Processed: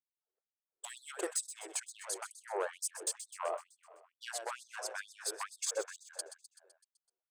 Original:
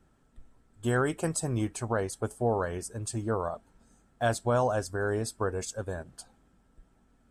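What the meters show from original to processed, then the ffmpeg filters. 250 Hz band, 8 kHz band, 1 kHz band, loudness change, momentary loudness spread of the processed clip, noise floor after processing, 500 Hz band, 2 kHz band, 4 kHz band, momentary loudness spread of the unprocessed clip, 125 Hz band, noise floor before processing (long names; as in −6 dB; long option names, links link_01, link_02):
−20.5 dB, +1.0 dB, −10.0 dB, −9.0 dB, 11 LU, below −85 dBFS, −12.0 dB, −8.0 dB, 0.0 dB, 10 LU, below −40 dB, −66 dBFS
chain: -af "anlmdn=0.158,acompressor=threshold=-34dB:ratio=6,aeval=exprs='0.0531*sin(PI/2*1.58*val(0)/0.0531)':channel_layout=same,aecho=1:1:127|254|381|508|635|762|889:0.251|0.148|0.0874|0.0516|0.0304|0.018|0.0106,afftfilt=real='re*gte(b*sr/1024,310*pow(3600/310,0.5+0.5*sin(2*PI*2.2*pts/sr)))':imag='im*gte(b*sr/1024,310*pow(3600/310,0.5+0.5*sin(2*PI*2.2*pts/sr)))':win_size=1024:overlap=0.75,volume=-1.5dB"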